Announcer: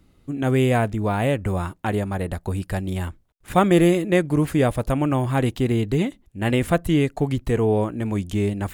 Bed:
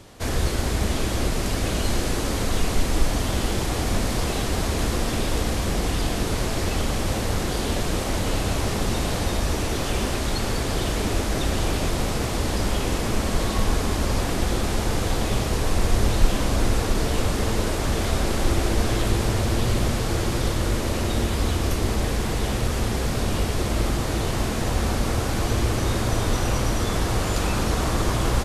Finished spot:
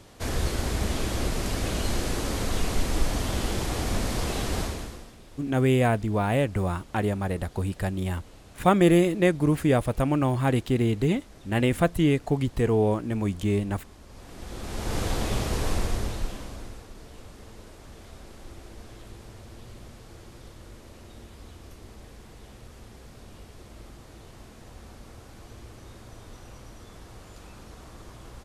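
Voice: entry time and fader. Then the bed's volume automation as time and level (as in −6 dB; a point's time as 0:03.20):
5.10 s, −2.5 dB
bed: 0:04.61 −4 dB
0:05.17 −26 dB
0:14.06 −26 dB
0:14.98 −4 dB
0:15.72 −4 dB
0:16.88 −23 dB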